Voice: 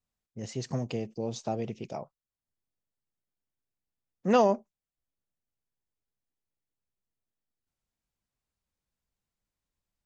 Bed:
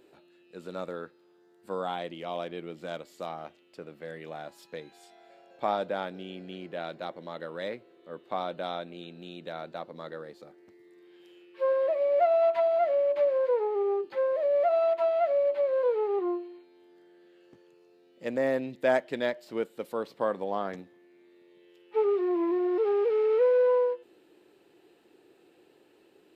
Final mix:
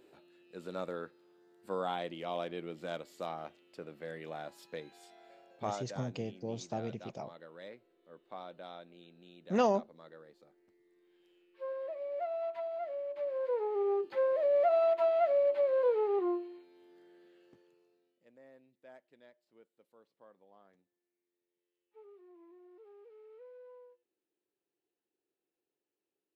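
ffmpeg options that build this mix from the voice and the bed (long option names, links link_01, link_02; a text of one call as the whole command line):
ffmpeg -i stem1.wav -i stem2.wav -filter_complex "[0:a]adelay=5250,volume=-5.5dB[link_01];[1:a]volume=8.5dB,afade=type=out:start_time=5.33:duration=0.52:silence=0.281838,afade=type=in:start_time=13.16:duration=0.84:silence=0.281838,afade=type=out:start_time=17.15:duration=1.1:silence=0.0375837[link_02];[link_01][link_02]amix=inputs=2:normalize=0" out.wav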